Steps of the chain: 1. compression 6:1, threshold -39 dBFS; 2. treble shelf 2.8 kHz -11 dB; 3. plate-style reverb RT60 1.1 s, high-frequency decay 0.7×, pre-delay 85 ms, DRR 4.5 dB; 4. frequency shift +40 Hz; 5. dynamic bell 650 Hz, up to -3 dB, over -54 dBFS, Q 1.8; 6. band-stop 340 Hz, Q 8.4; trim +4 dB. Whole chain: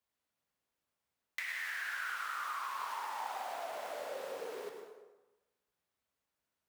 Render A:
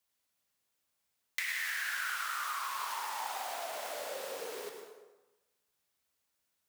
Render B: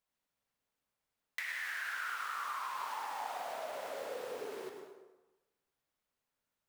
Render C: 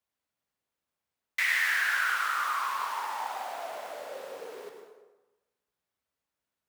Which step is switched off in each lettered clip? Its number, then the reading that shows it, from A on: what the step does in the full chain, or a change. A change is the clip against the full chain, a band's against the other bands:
2, 8 kHz band +8.5 dB; 4, 250 Hz band +4.0 dB; 1, crest factor change +3.0 dB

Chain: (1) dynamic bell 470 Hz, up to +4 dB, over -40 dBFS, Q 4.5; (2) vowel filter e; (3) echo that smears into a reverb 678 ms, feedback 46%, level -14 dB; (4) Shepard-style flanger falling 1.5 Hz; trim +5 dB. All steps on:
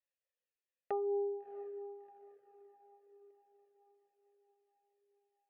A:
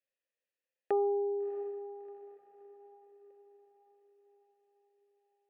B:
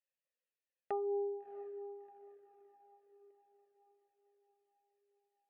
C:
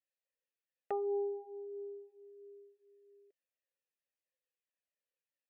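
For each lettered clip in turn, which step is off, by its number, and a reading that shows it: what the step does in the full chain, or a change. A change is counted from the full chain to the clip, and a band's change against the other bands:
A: 4, momentary loudness spread change +3 LU; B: 1, loudness change -1.5 LU; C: 3, momentary loudness spread change +4 LU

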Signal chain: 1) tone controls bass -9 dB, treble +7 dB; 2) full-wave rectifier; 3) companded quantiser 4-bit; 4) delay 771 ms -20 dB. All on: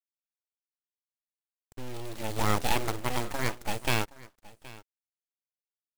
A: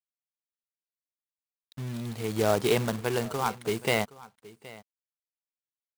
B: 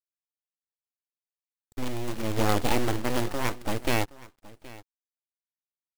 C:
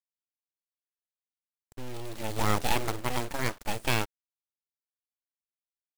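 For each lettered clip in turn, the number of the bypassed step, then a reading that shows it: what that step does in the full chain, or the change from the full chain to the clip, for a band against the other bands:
2, 500 Hz band +8.0 dB; 1, 250 Hz band +5.5 dB; 4, momentary loudness spread change -5 LU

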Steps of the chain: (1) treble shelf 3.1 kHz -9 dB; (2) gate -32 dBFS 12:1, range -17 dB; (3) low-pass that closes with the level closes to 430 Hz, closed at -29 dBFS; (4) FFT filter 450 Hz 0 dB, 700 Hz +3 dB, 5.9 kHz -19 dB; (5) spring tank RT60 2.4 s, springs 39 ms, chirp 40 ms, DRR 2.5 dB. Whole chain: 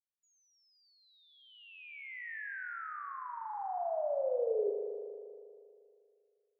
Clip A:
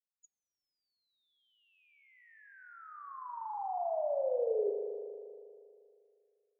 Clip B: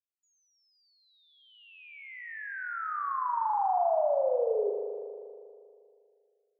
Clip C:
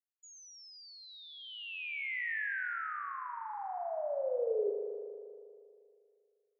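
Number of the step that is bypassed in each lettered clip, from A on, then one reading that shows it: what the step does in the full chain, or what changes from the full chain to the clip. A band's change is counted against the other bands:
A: 1, momentary loudness spread change +1 LU; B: 3, crest factor change -2.5 dB; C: 4, momentary loudness spread change -2 LU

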